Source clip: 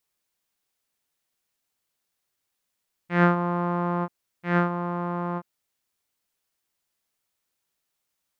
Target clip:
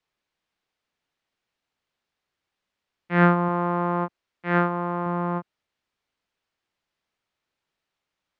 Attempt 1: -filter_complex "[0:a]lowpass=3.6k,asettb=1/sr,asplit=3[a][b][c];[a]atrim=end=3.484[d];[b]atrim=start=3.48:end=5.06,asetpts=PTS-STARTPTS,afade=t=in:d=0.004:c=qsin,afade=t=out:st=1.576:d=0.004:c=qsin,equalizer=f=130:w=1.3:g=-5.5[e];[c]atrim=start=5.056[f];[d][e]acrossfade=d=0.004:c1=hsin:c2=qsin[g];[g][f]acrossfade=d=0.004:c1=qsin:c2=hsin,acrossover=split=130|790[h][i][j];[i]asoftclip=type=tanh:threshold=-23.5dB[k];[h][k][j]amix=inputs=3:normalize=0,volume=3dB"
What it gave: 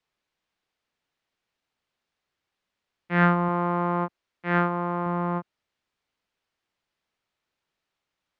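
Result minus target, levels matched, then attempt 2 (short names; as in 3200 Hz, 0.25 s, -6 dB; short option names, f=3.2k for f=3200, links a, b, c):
soft clip: distortion +13 dB
-filter_complex "[0:a]lowpass=3.6k,asettb=1/sr,asplit=3[a][b][c];[a]atrim=end=3.484[d];[b]atrim=start=3.48:end=5.06,asetpts=PTS-STARTPTS,afade=t=in:d=0.004:c=qsin,afade=t=out:st=1.576:d=0.004:c=qsin,equalizer=f=130:w=1.3:g=-5.5[e];[c]atrim=start=5.056[f];[d][e]acrossfade=d=0.004:c1=hsin:c2=qsin[g];[g][f]acrossfade=d=0.004:c1=qsin:c2=hsin,acrossover=split=130|790[h][i][j];[i]asoftclip=type=tanh:threshold=-13dB[k];[h][k][j]amix=inputs=3:normalize=0,volume=3dB"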